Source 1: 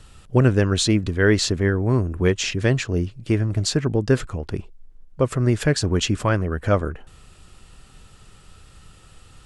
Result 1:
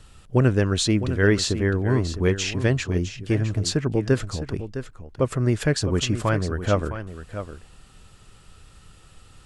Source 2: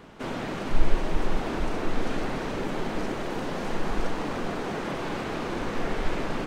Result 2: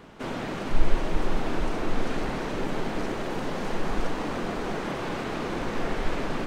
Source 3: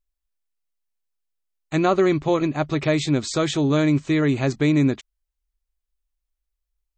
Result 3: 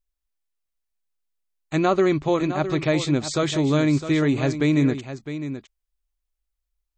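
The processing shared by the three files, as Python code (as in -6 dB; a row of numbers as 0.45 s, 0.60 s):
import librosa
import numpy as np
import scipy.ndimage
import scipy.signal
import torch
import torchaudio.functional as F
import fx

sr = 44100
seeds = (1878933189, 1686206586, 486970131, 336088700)

y = x + 10.0 ** (-11.0 / 20.0) * np.pad(x, (int(659 * sr / 1000.0), 0))[:len(x)]
y = y * 10.0 ** (-24 / 20.0) / np.sqrt(np.mean(np.square(y)))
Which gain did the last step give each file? -2.0 dB, 0.0 dB, -1.0 dB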